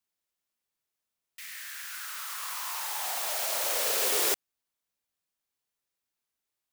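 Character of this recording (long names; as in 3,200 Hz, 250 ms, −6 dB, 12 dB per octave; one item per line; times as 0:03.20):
background noise floor −87 dBFS
spectral slope +1.5 dB per octave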